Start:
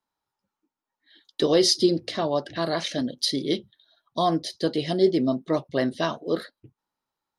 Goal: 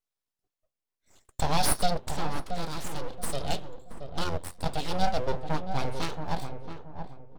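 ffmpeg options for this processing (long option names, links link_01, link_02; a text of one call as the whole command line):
ffmpeg -i in.wav -filter_complex "[0:a]equalizer=frequency=1200:width_type=o:width=1.3:gain=-13.5,bandreject=frequency=128.6:width_type=h:width=4,bandreject=frequency=257.2:width_type=h:width=4,bandreject=frequency=385.8:width_type=h:width=4,bandreject=frequency=514.4:width_type=h:width=4,bandreject=frequency=643:width_type=h:width=4,bandreject=frequency=771.6:width_type=h:width=4,bandreject=frequency=900.2:width_type=h:width=4,bandreject=frequency=1028.8:width_type=h:width=4,bandreject=frequency=1157.4:width_type=h:width=4,bandreject=frequency=1286:width_type=h:width=4,bandreject=frequency=1414.6:width_type=h:width=4,bandreject=frequency=1543.2:width_type=h:width=4,bandreject=frequency=1671.8:width_type=h:width=4,bandreject=frequency=1800.4:width_type=h:width=4,bandreject=frequency=1929:width_type=h:width=4,bandreject=frequency=2057.6:width_type=h:width=4,bandreject=frequency=2186.2:width_type=h:width=4,bandreject=frequency=2314.8:width_type=h:width=4,bandreject=frequency=2443.4:width_type=h:width=4,bandreject=frequency=2572:width_type=h:width=4,bandreject=frequency=2700.6:width_type=h:width=4,bandreject=frequency=2829.2:width_type=h:width=4,bandreject=frequency=2957.8:width_type=h:width=4,bandreject=frequency=3086.4:width_type=h:width=4,bandreject=frequency=3215:width_type=h:width=4,bandreject=frequency=3343.6:width_type=h:width=4,bandreject=frequency=3472.2:width_type=h:width=4,bandreject=frequency=3600.8:width_type=h:width=4,asplit=3[link_01][link_02][link_03];[link_01]afade=type=out:start_time=4.24:duration=0.02[link_04];[link_02]aeval=exprs='val(0)*sin(2*PI*44*n/s)':channel_layout=same,afade=type=in:start_time=4.24:duration=0.02,afade=type=out:start_time=4.64:duration=0.02[link_05];[link_03]afade=type=in:start_time=4.64:duration=0.02[link_06];[link_04][link_05][link_06]amix=inputs=3:normalize=0,aeval=exprs='abs(val(0))':channel_layout=same,asettb=1/sr,asplit=3[link_07][link_08][link_09];[link_07]atrim=end=2.274[link_10];[link_08]atrim=start=2.27:end=3.3,asetpts=PTS-STARTPTS,afade=type=in:duration=0.004:curve=qsin,afade=type=out:start_time=1.026:duration=0.004:curve=qsin,aeval=exprs='0.224*(cos(1*acos(clip(val(0)/0.224,-1,1)))-cos(1*PI/2))+0.0316*(cos(4*acos(clip(val(0)/0.224,-1,1)))-cos(4*PI/2))':channel_layout=same[link_11];[link_09]atrim=start=3.296[link_12];[link_10][link_11]acrossfade=duration=0.004:curve1=hsin:curve2=qsin[link_13];[link_13][link_12]acrossfade=duration=0.004:curve1=qsin:curve2=hsin,asplit=2[link_14][link_15];[link_15]adelay=676,lowpass=frequency=980:poles=1,volume=-6.5dB,asplit=2[link_16][link_17];[link_17]adelay=676,lowpass=frequency=980:poles=1,volume=0.33,asplit=2[link_18][link_19];[link_19]adelay=676,lowpass=frequency=980:poles=1,volume=0.33,asplit=2[link_20][link_21];[link_21]adelay=676,lowpass=frequency=980:poles=1,volume=0.33[link_22];[link_14][link_16][link_18][link_20][link_22]amix=inputs=5:normalize=0" out.wav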